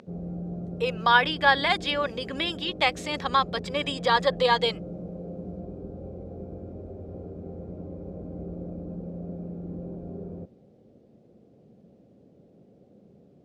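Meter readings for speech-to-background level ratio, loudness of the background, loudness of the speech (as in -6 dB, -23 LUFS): 13.5 dB, -38.0 LUFS, -24.5 LUFS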